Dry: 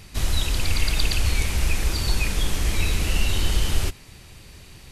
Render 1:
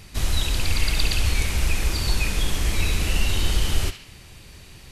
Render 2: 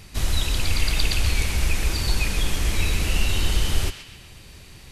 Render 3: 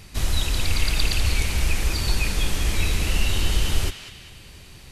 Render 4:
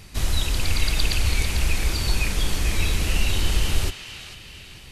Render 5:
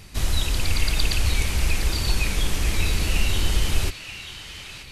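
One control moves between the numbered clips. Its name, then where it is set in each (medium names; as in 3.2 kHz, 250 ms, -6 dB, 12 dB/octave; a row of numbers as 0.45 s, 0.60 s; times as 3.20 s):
band-passed feedback delay, time: 68 ms, 129 ms, 197 ms, 446 ms, 932 ms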